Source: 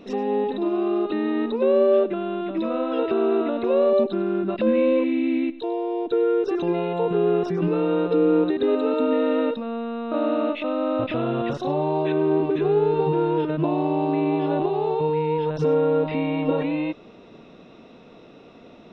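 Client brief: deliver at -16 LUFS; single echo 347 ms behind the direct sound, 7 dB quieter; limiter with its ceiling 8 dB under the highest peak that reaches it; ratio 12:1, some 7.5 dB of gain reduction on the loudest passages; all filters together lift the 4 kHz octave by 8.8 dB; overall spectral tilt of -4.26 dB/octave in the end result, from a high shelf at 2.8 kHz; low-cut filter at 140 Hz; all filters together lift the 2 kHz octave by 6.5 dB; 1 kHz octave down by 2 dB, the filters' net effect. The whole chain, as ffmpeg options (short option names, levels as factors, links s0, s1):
-af "highpass=140,equalizer=f=1000:t=o:g=-5,equalizer=f=2000:t=o:g=5,highshelf=f=2800:g=6.5,equalizer=f=4000:t=o:g=4.5,acompressor=threshold=0.0708:ratio=12,alimiter=limit=0.0708:level=0:latency=1,aecho=1:1:347:0.447,volume=5.01"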